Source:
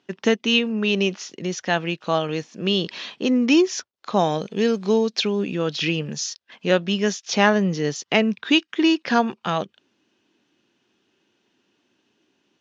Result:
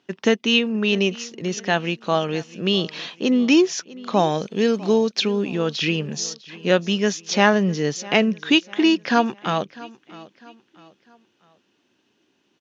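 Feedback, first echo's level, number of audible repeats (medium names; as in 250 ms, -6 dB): 40%, -20.0 dB, 2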